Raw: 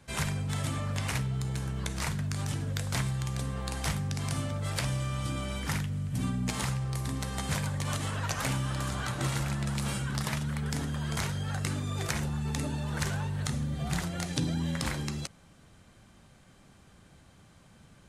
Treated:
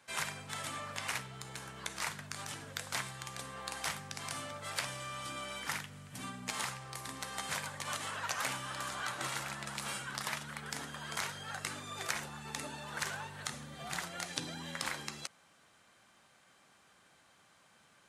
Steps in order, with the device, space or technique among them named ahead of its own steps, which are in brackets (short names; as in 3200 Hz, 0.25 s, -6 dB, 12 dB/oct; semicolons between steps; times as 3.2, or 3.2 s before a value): filter by subtraction (in parallel: LPF 1200 Hz 12 dB/oct + phase invert); on the sum: gain -3 dB